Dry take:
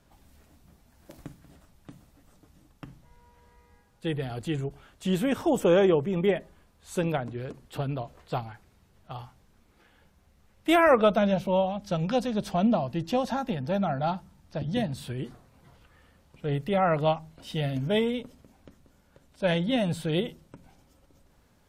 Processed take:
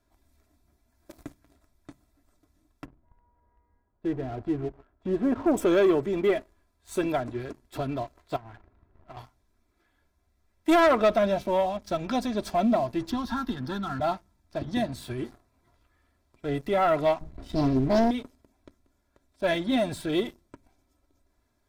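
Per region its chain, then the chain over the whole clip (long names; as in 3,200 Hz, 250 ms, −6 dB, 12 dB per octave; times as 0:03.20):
0:02.85–0:05.57: low-pass filter 1,100 Hz + single-tap delay 135 ms −18 dB
0:08.36–0:09.17: mu-law and A-law mismatch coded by mu + low-pass filter 1,400 Hz + downward compressor 12 to 1, threshold −39 dBFS
0:13.10–0:14.00: phaser with its sweep stopped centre 2,300 Hz, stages 6 + multiband upward and downward compressor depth 100%
0:17.21–0:18.11: spectral tilt −3 dB per octave + highs frequency-modulated by the lows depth 0.81 ms
whole clip: notch filter 2,900 Hz, Q 5.7; comb filter 3 ms, depth 70%; leveller curve on the samples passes 2; level −7 dB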